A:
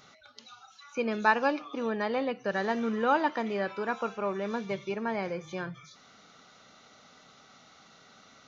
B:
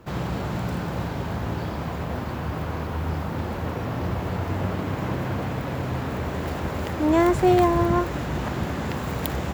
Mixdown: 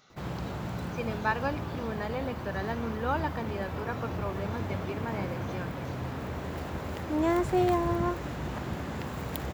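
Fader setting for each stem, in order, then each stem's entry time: -5.0 dB, -7.5 dB; 0.00 s, 0.10 s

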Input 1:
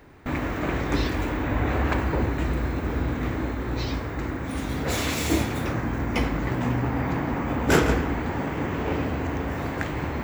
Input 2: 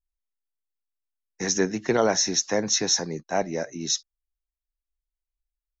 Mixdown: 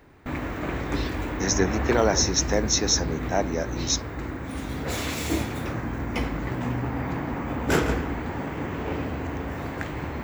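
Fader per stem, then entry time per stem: -3.0 dB, 0.0 dB; 0.00 s, 0.00 s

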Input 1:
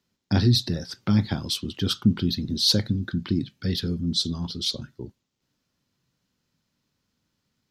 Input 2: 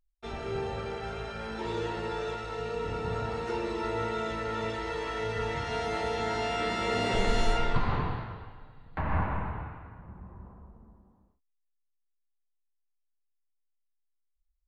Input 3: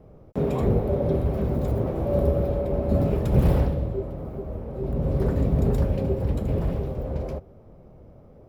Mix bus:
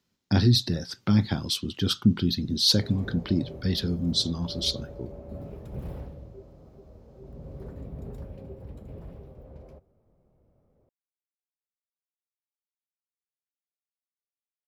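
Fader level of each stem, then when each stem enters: -0.5 dB, mute, -17.5 dB; 0.00 s, mute, 2.40 s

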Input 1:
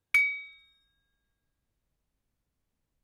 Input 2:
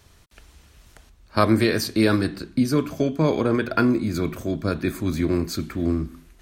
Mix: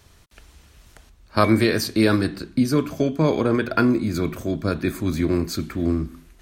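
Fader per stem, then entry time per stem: -11.0 dB, +1.0 dB; 1.30 s, 0.00 s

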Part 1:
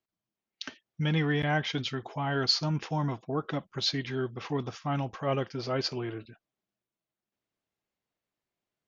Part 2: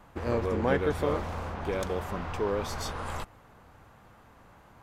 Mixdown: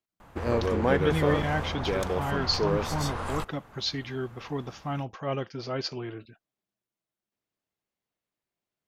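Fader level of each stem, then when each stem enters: -1.5 dB, +2.5 dB; 0.00 s, 0.20 s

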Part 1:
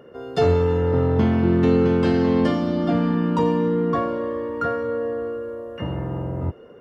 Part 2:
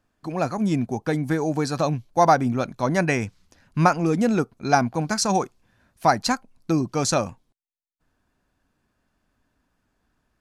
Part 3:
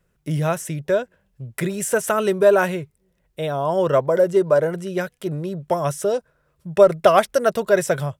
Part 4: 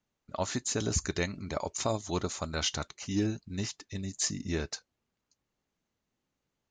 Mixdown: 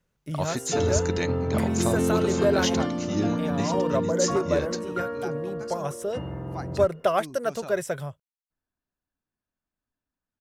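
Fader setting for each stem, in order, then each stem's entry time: -7.0 dB, -19.5 dB, -9.0 dB, +2.0 dB; 0.35 s, 0.50 s, 0.00 s, 0.00 s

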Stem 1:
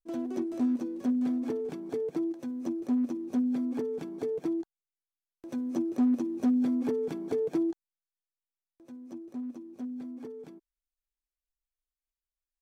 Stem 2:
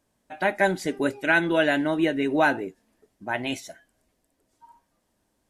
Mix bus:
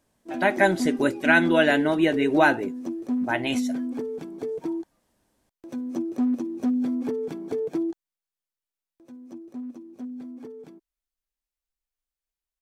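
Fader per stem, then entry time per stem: +1.5 dB, +2.0 dB; 0.20 s, 0.00 s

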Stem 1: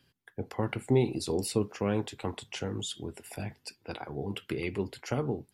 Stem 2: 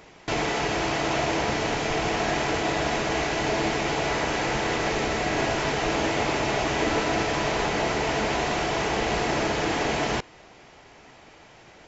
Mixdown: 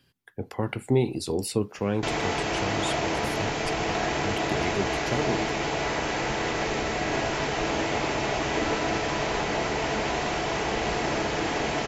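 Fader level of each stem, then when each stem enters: +2.5 dB, -2.0 dB; 0.00 s, 1.75 s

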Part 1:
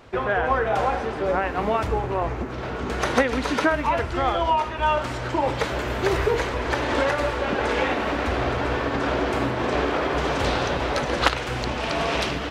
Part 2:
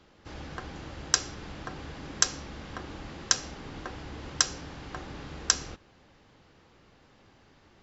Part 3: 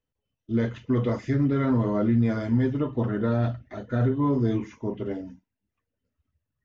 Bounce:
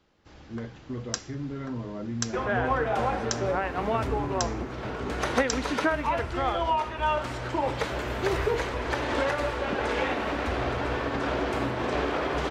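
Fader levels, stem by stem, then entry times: -4.5 dB, -8.0 dB, -11.5 dB; 2.20 s, 0.00 s, 0.00 s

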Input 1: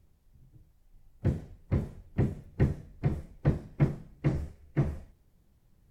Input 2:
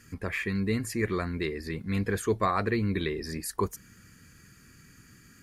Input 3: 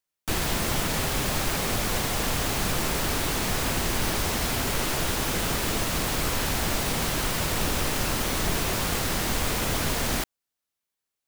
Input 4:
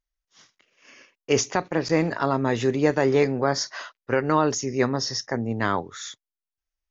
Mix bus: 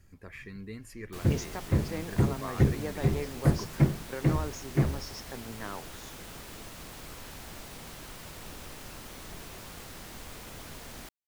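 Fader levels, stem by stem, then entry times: +2.5 dB, -14.0 dB, -18.0 dB, -16.0 dB; 0.00 s, 0.00 s, 0.85 s, 0.00 s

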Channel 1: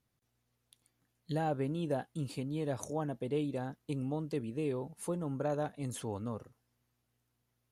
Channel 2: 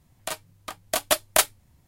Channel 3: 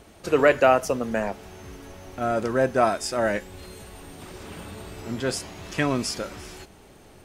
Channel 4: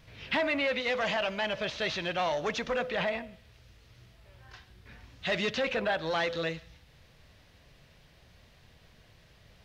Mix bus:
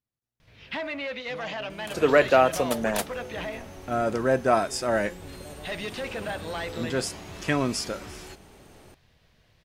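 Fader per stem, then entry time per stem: -12.0 dB, -12.5 dB, -1.0 dB, -4.0 dB; 0.00 s, 1.60 s, 1.70 s, 0.40 s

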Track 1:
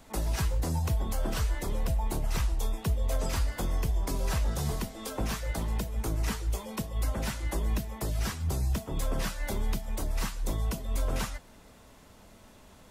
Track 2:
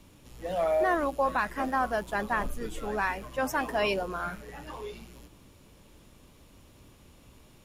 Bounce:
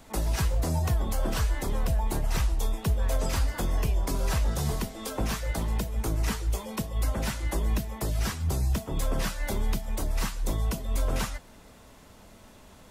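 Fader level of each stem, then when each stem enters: +2.5 dB, -17.0 dB; 0.00 s, 0.00 s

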